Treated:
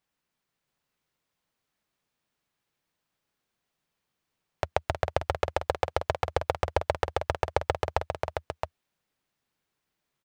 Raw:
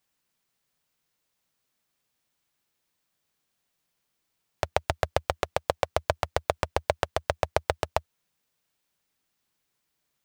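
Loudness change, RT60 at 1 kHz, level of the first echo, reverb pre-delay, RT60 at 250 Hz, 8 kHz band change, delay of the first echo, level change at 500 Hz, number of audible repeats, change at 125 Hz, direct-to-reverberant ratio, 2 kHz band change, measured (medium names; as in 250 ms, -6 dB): -1.0 dB, no reverb, -9.0 dB, no reverb, no reverb, -6.0 dB, 316 ms, -0.5 dB, 2, +1.0 dB, no reverb, -1.0 dB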